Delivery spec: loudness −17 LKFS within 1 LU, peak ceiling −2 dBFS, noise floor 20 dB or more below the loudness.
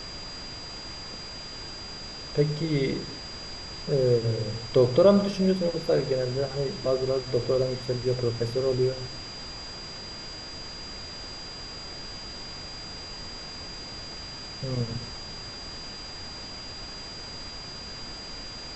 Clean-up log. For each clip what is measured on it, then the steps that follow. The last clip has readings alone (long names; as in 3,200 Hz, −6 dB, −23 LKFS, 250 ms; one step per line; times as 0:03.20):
interfering tone 4,800 Hz; level of the tone −39 dBFS; background noise floor −40 dBFS; target noise floor −50 dBFS; integrated loudness −29.5 LKFS; sample peak −8.0 dBFS; target loudness −17.0 LKFS
→ notch filter 4,800 Hz, Q 30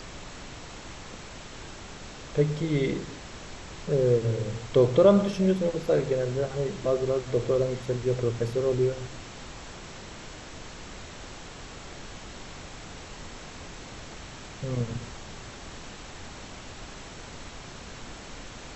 interfering tone none found; background noise floor −43 dBFS; target noise floor −47 dBFS
→ noise reduction from a noise print 6 dB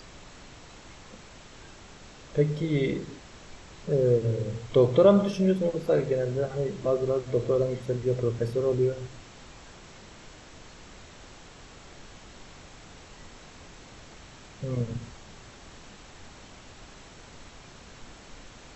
background noise floor −49 dBFS; integrated loudness −26.5 LKFS; sample peak −8.0 dBFS; target loudness −17.0 LKFS
→ level +9.5 dB
brickwall limiter −2 dBFS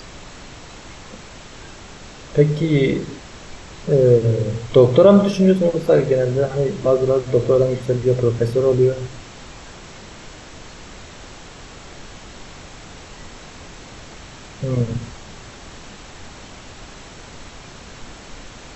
integrated loudness −17.0 LKFS; sample peak −2.0 dBFS; background noise floor −40 dBFS